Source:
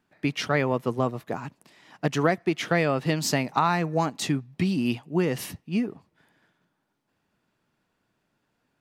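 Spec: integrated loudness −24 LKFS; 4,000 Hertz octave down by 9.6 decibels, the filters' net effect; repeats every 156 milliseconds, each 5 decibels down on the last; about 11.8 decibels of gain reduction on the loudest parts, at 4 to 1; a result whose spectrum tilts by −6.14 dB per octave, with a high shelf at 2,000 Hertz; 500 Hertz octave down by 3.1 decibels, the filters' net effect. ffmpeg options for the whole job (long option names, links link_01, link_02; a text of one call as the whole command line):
ffmpeg -i in.wav -af "equalizer=frequency=500:width_type=o:gain=-3.5,highshelf=frequency=2000:gain=-6.5,equalizer=frequency=4000:width_type=o:gain=-6.5,acompressor=threshold=-35dB:ratio=4,aecho=1:1:156|312|468|624|780|936|1092:0.562|0.315|0.176|0.0988|0.0553|0.031|0.0173,volume=13.5dB" out.wav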